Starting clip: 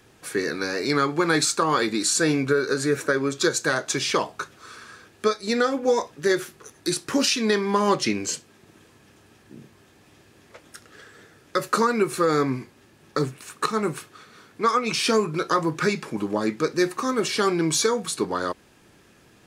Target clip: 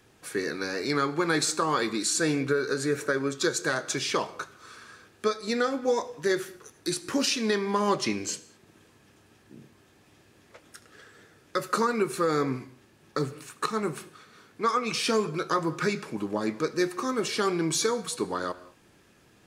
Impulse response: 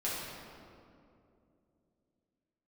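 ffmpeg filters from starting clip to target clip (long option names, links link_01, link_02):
-filter_complex "[0:a]asplit=2[link_01][link_02];[1:a]atrim=start_sample=2205,afade=type=out:start_time=0.2:duration=0.01,atrim=end_sample=9261,adelay=73[link_03];[link_02][link_03]afir=irnorm=-1:irlink=0,volume=-21dB[link_04];[link_01][link_04]amix=inputs=2:normalize=0,volume=-4.5dB"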